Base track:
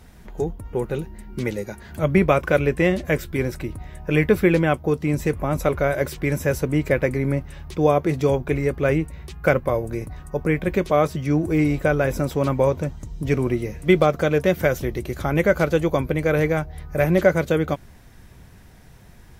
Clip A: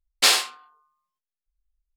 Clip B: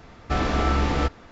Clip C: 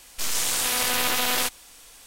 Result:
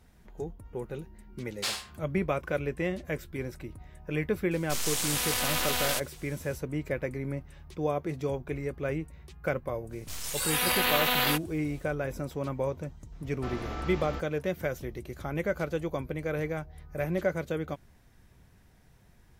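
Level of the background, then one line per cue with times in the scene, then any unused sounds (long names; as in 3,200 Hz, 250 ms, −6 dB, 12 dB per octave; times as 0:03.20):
base track −12 dB
0:01.40: mix in A −15 dB
0:04.51: mix in C −5.5 dB
0:09.89: mix in C −0.5 dB, fades 0.05 s + noise reduction from a noise print of the clip's start 12 dB
0:13.12: mix in B −14 dB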